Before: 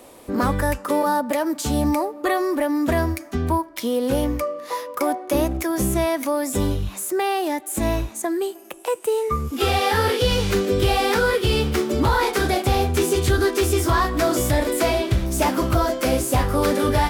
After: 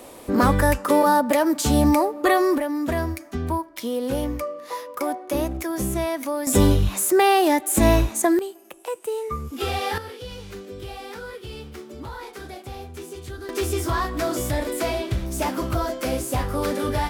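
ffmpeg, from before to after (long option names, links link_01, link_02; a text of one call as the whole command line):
ffmpeg -i in.wav -af "asetnsamples=nb_out_samples=441:pad=0,asendcmd='2.58 volume volume -4dB;6.47 volume volume 5.5dB;8.39 volume volume -6dB;9.98 volume volume -17dB;13.49 volume volume -5dB',volume=3dB" out.wav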